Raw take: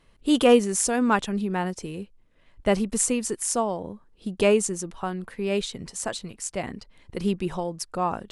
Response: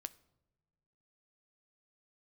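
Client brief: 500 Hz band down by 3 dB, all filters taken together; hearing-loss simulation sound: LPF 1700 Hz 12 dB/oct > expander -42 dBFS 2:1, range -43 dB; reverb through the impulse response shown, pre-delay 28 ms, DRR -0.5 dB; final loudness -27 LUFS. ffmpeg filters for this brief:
-filter_complex "[0:a]equalizer=f=500:t=o:g=-3.5,asplit=2[a][b];[1:a]atrim=start_sample=2205,adelay=28[c];[b][c]afir=irnorm=-1:irlink=0,volume=4.5dB[d];[a][d]amix=inputs=2:normalize=0,lowpass=1.7k,agate=range=-43dB:threshold=-42dB:ratio=2,volume=-2dB"

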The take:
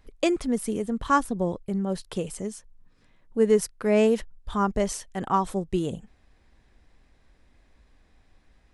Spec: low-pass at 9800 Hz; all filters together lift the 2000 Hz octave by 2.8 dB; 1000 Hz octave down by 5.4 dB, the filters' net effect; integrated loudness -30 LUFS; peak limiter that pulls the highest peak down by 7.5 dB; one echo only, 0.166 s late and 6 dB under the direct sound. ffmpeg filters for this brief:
-af "lowpass=9.8k,equalizer=f=1k:t=o:g=-8.5,equalizer=f=2k:t=o:g=6.5,alimiter=limit=-17.5dB:level=0:latency=1,aecho=1:1:166:0.501,volume=-1dB"

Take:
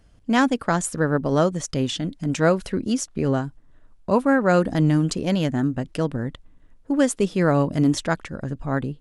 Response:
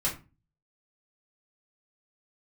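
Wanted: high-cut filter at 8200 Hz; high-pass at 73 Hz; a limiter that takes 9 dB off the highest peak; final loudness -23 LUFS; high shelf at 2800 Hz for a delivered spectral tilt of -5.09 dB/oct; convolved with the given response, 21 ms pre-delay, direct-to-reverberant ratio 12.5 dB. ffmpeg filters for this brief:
-filter_complex "[0:a]highpass=73,lowpass=8.2k,highshelf=f=2.8k:g=7.5,alimiter=limit=-13.5dB:level=0:latency=1,asplit=2[a][b];[1:a]atrim=start_sample=2205,adelay=21[c];[b][c]afir=irnorm=-1:irlink=0,volume=-19.5dB[d];[a][d]amix=inputs=2:normalize=0,volume=1dB"

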